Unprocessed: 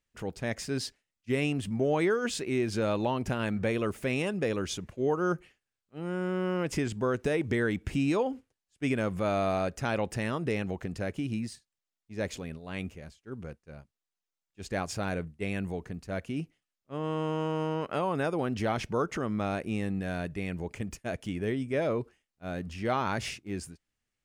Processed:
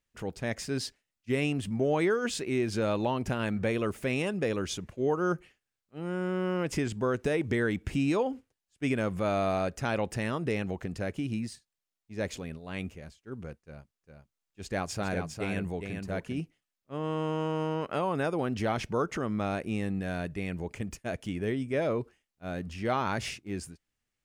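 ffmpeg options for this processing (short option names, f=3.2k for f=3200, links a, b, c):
-filter_complex "[0:a]asettb=1/sr,asplit=3[a][b][c];[a]atrim=end=13.624[d];[b]atrim=start=13.62:end=16.4,asetpts=PTS-STARTPTS,afade=t=in:d=0.004:c=qsin,afade=t=out:st=2.776:d=0.004:c=qsin,aecho=1:1:405:0.501,atrim=end_sample=122598[e];[c]atrim=start=16.396[f];[d][e]acrossfade=d=0.004:c1=hsin:c2=qsin[g];[g][f]acrossfade=d=0.004:c1=qsin:c2=hsin"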